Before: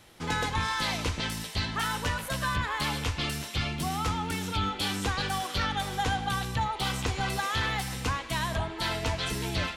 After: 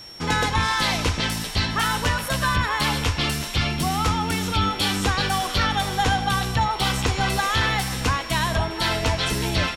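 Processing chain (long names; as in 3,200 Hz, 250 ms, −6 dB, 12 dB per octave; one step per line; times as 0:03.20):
echo with shifted repeats 407 ms, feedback 59%, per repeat −66 Hz, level −20 dB
steady tone 5,500 Hz −47 dBFS
level +7.5 dB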